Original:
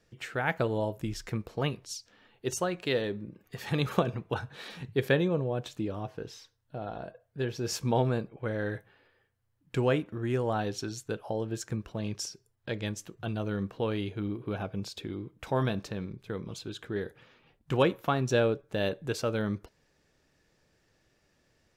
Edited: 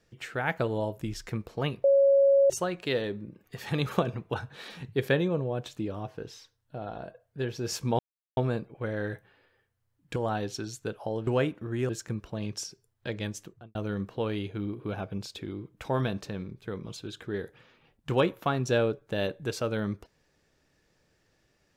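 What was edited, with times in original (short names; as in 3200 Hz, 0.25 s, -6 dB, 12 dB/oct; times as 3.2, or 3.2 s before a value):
1.84–2.5 bleep 553 Hz -17 dBFS
7.99 insert silence 0.38 s
9.78–10.4 move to 11.51
13.03–13.37 studio fade out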